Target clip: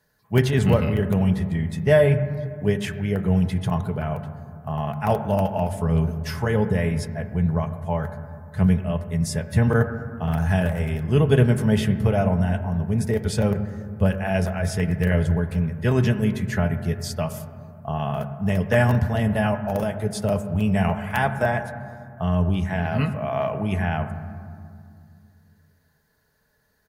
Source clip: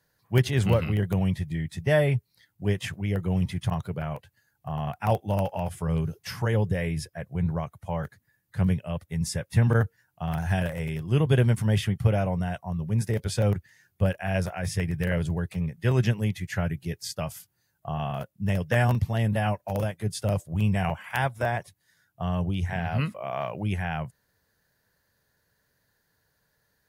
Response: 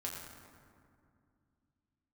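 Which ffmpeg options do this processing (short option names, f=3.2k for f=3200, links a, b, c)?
-filter_complex "[0:a]aecho=1:1:4.7:0.38,asplit=2[a][b];[1:a]atrim=start_sample=2205,lowpass=2.1k[c];[b][c]afir=irnorm=-1:irlink=0,volume=-4dB[d];[a][d]amix=inputs=2:normalize=0,volume=1.5dB"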